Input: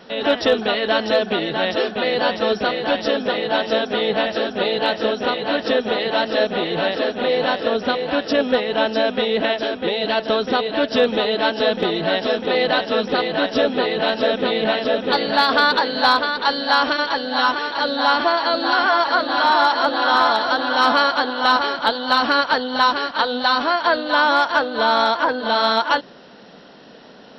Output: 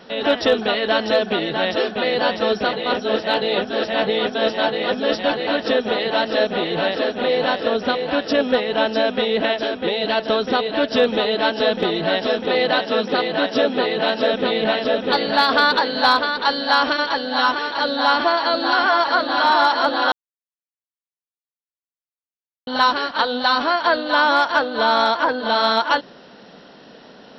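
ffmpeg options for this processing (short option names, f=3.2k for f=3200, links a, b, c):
-filter_complex "[0:a]asettb=1/sr,asplit=3[a][b][c];[a]atrim=end=12.594[d];[b]atrim=start=12.59:end=14.34,asetpts=PTS-STARTPTS,afade=t=in:d=0.004:c=qsin,afade=t=out:st=1.746:d=0.004:c=qsin,highpass=120[e];[c]atrim=start=14.336[f];[d][e]acrossfade=d=0.004:c1=hsin:c2=qsin[g];[g][f]acrossfade=d=0.004:c1=qsin:c2=hsin,asplit=5[h][i][j][k][l];[h]atrim=end=2.732[m];[i]atrim=start=2.728:end=5.472,asetpts=PTS-STARTPTS,areverse[n];[j]atrim=start=5.468:end=20.12,asetpts=PTS-STARTPTS,afade=t=out:st=14.648:d=0.004:c=hsin[o];[k]atrim=start=20.12:end=22.67,asetpts=PTS-STARTPTS,volume=0[p];[l]atrim=start=22.67,asetpts=PTS-STARTPTS,afade=t=in:d=0.004:c=hsin[q];[m][n]acrossfade=d=0.004:c1=hsin:c2=hsin[r];[o][p][q]concat=n=3:v=0:a=1[s];[r][s]acrossfade=d=0.004:c1=hsin:c2=hsin"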